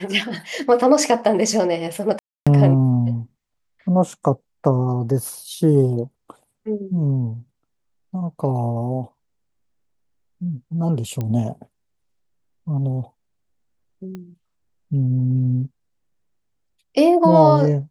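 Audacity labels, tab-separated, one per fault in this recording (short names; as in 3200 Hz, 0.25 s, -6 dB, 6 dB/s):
2.190000	2.470000	gap 0.276 s
11.210000	11.210000	pop -14 dBFS
14.150000	14.150000	pop -22 dBFS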